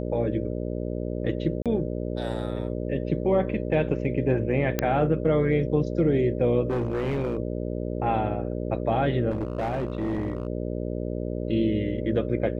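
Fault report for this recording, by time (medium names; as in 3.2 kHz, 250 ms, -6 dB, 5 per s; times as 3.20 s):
buzz 60 Hz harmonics 10 -30 dBFS
1.62–1.66 s: dropout 37 ms
4.79 s: pop -9 dBFS
6.70–7.37 s: clipped -22.5 dBFS
9.30–10.47 s: clipped -23.5 dBFS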